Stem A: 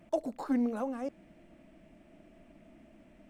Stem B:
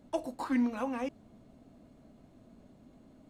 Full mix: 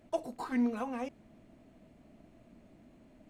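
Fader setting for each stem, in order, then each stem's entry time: −6.0, −3.0 decibels; 0.00, 0.00 seconds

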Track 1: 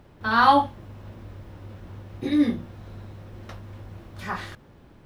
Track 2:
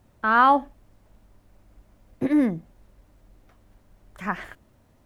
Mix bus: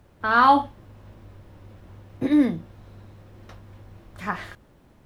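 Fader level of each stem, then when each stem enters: −5.0, −1.0 decibels; 0.00, 0.00 seconds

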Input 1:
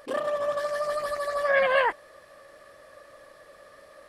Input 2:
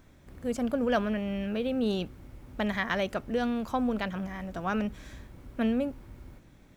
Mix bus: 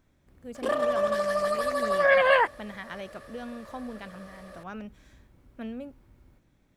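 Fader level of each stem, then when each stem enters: +2.0, −10.0 decibels; 0.55, 0.00 seconds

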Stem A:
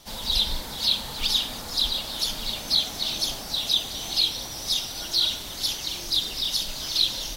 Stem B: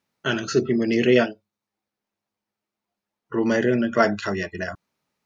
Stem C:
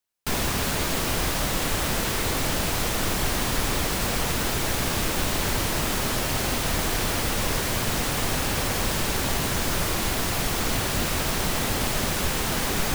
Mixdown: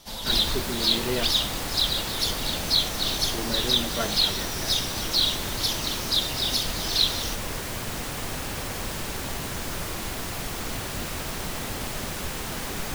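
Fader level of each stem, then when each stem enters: 0.0, −12.0, −6.5 decibels; 0.00, 0.00, 0.00 seconds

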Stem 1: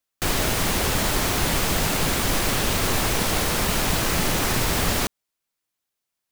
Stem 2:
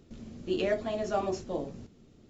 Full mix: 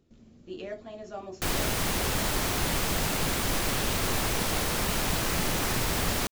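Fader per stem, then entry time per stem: −5.5, −9.5 decibels; 1.20, 0.00 seconds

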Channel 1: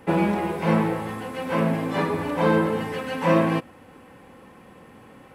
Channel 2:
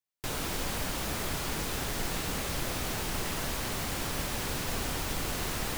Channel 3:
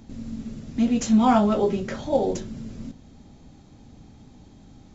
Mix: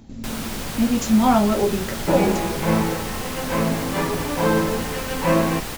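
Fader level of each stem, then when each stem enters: +0.5, +3.0, +1.5 decibels; 2.00, 0.00, 0.00 seconds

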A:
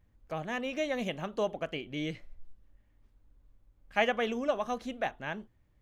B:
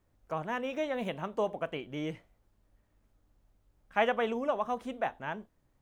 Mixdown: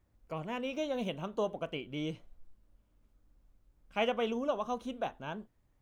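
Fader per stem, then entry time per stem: −7.5, −4.0 decibels; 0.00, 0.00 seconds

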